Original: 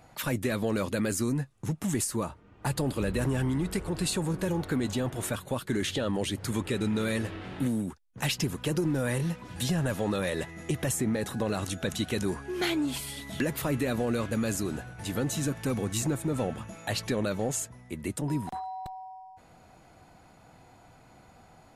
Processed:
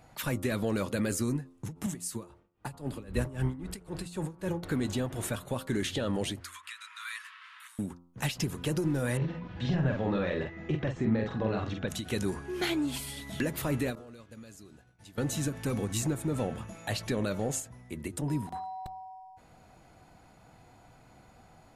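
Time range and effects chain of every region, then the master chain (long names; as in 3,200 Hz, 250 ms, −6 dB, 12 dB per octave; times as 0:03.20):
0:01.86–0:04.63: amplitude tremolo 3.8 Hz, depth 89% + multiband upward and downward expander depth 70%
0:06.40–0:07.79: Butterworth high-pass 1,000 Hz 96 dB per octave + high-shelf EQ 3,800 Hz −5.5 dB
0:09.17–0:11.88: Gaussian smoothing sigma 2.3 samples + double-tracking delay 45 ms −3.5 dB
0:13.95–0:15.18: parametric band 4,700 Hz +5 dB 1.5 octaves + downward compressor 5 to 1, threshold −35 dBFS + downward expander −31 dBFS
whole clip: low-shelf EQ 140 Hz +3 dB; hum removal 87.37 Hz, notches 16; every ending faded ahead of time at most 200 dB per second; level −2 dB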